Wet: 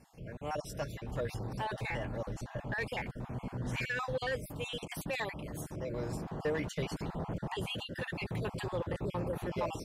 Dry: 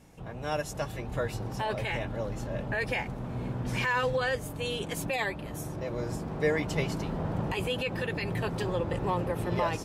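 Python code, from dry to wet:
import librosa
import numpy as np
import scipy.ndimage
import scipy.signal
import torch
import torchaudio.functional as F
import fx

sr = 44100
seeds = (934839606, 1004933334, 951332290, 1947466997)

y = fx.spec_dropout(x, sr, seeds[0], share_pct=34)
y = 10.0 ** (-23.0 / 20.0) * np.tanh(y / 10.0 ** (-23.0 / 20.0))
y = y * 10.0 ** (-3.0 / 20.0)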